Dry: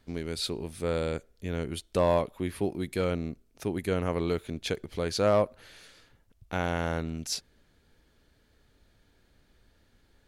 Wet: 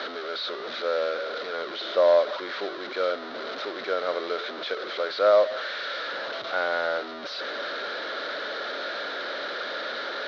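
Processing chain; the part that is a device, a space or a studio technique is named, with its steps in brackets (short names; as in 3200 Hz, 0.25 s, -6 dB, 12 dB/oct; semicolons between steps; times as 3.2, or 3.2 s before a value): digital answering machine (BPF 370–3100 Hz; delta modulation 32 kbps, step -30 dBFS; speaker cabinet 390–4400 Hz, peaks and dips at 580 Hz +9 dB, 880 Hz -5 dB, 1400 Hz +9 dB, 2600 Hz -7 dB, 3900 Hz +8 dB); gain +1.5 dB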